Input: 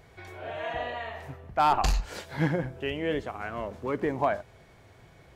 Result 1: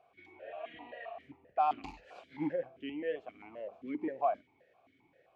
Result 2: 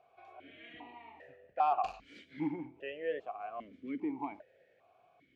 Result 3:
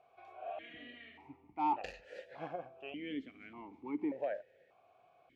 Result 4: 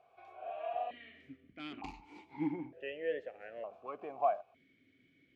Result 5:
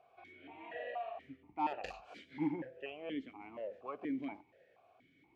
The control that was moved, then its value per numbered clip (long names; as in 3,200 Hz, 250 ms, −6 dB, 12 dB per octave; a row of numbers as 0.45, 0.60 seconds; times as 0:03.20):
formant filter that steps through the vowels, speed: 7.6, 2.5, 1.7, 1.1, 4.2 Hertz